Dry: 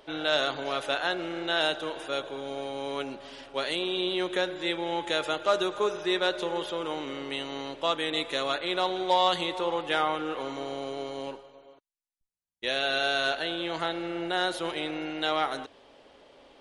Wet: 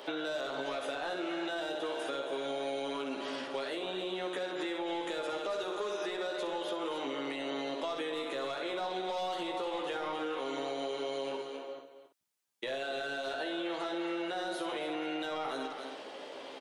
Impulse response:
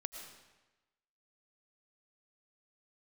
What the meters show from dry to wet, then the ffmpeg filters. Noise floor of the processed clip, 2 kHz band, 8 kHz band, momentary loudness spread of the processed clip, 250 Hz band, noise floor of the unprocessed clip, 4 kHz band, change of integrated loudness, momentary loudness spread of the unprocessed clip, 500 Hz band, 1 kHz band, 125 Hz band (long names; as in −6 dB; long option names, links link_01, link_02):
−51 dBFS, −8.5 dB, −6.0 dB, 3 LU, −4.0 dB, −62 dBFS, −10.0 dB, −7.0 dB, 9 LU, −5.0 dB, −7.5 dB, −11.0 dB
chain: -filter_complex "[0:a]highpass=260,asoftclip=type=tanh:threshold=-21dB,asplit=2[link_01][link_02];[link_02]aecho=0:1:15|64:0.708|0.501[link_03];[link_01][link_03]amix=inputs=2:normalize=0,alimiter=level_in=5.5dB:limit=-24dB:level=0:latency=1:release=267,volume=-5.5dB,asplit=2[link_04][link_05];[link_05]aecho=0:1:271:0.266[link_06];[link_04][link_06]amix=inputs=2:normalize=0,acrossover=split=820|1700[link_07][link_08][link_09];[link_07]acompressor=threshold=-43dB:ratio=4[link_10];[link_08]acompressor=threshold=-53dB:ratio=4[link_11];[link_09]acompressor=threshold=-53dB:ratio=4[link_12];[link_10][link_11][link_12]amix=inputs=3:normalize=0,volume=7.5dB"